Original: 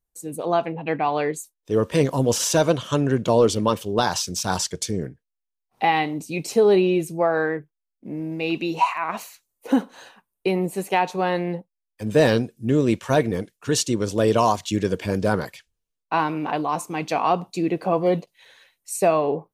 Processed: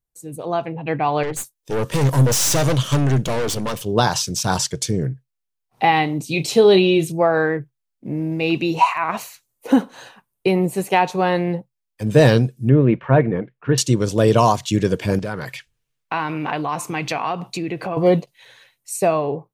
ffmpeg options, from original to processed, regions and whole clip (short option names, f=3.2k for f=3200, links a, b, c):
-filter_complex "[0:a]asettb=1/sr,asplit=3[a][b][c];[a]atrim=end=1.234[d];[b]atrim=start=1.23:end=3.82,asetpts=PTS-STARTPTS,afade=t=in:d=0.004:c=qsin,afade=t=out:st=2.586:d=0.004:c=qsin,highshelf=f=4k:g=8.5,aeval=exprs='(tanh(17.8*val(0)+0.65)-tanh(0.65))/17.8':c=same[e];[c]atrim=start=3.816[f];[d][e]acrossfade=d=0.004:c1=hsin:c2=qsin[g];[g][f]acrossfade=d=0.004:c1=qsin:c2=hsin,asettb=1/sr,asplit=3[h][i][j];[h]atrim=end=6.244[k];[i]atrim=start=6.24:end=7.12,asetpts=PTS-STARTPTS,afade=t=in:d=0.004:c=qsin,afade=t=out:st=0.876:d=0.004:c=qsin,equalizer=f=3.5k:t=o:w=0.71:g=11.5,asplit=2[l][m];[m]adelay=31,volume=-12.5dB[n];[l][n]amix=inputs=2:normalize=0,atrim=end_sample=38808[o];[j]atrim=start=7.116[p];[k][o]acrossfade=d=0.004:c1=hsin:c2=qsin[q];[q][p]acrossfade=d=0.004:c1=qsin:c2=hsin,asettb=1/sr,asplit=3[r][s][t];[r]atrim=end=12.694[u];[s]atrim=start=12.69:end=13.78,asetpts=PTS-STARTPTS,afade=t=in:d=0.004:c=qsin,afade=t=out:st=1.086:d=0.004:c=qsin,lowpass=f=2.3k:w=0.5412,lowpass=f=2.3k:w=1.3066,equalizer=f=100:w=3.9:g=-11.5[v];[t]atrim=start=13.776[w];[u][v]acrossfade=d=0.004:c1=hsin:c2=qsin[x];[x][w]acrossfade=d=0.004:c1=qsin:c2=hsin,asettb=1/sr,asplit=3[y][z][aa];[y]atrim=end=15.194[ab];[z]atrim=start=15.19:end=17.97,asetpts=PTS-STARTPTS,afade=t=in:d=0.004:c=qsin,afade=t=out:st=2.776:d=0.004:c=qsin,acompressor=threshold=-33dB:ratio=2.5:attack=3.2:release=140:knee=1:detection=peak,equalizer=f=2.1k:t=o:w=1.6:g=7[ac];[aa]atrim=start=17.966[ad];[ab][ac]acrossfade=d=0.004:c1=hsin:c2=qsin[ae];[ae][ad]acrossfade=d=0.004:c1=qsin:c2=hsin,dynaudnorm=f=270:g=7:m=11.5dB,equalizer=f=130:t=o:w=0.37:g=12,volume=-2.5dB"